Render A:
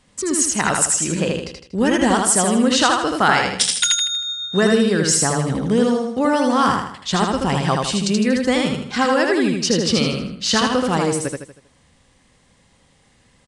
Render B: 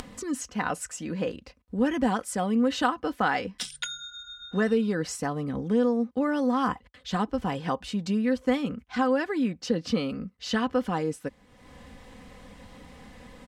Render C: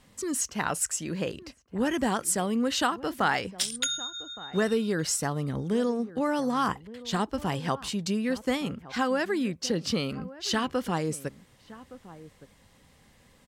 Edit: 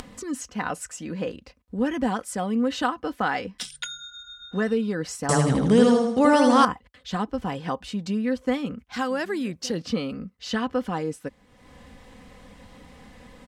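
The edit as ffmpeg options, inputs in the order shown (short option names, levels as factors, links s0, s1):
-filter_complex "[1:a]asplit=3[s0][s1][s2];[s0]atrim=end=5.292[s3];[0:a]atrim=start=5.288:end=6.652[s4];[s1]atrim=start=6.648:end=8.922[s5];[2:a]atrim=start=8.918:end=9.822[s6];[s2]atrim=start=9.818[s7];[s3][s4]acrossfade=d=0.004:c1=hsin:c2=hsin[s8];[s8][s5]acrossfade=d=0.004:c1=hsin:c2=hsin[s9];[s9][s6]acrossfade=d=0.004:c1=hsin:c2=hsin[s10];[s10][s7]acrossfade=d=0.004:c1=hsin:c2=hsin"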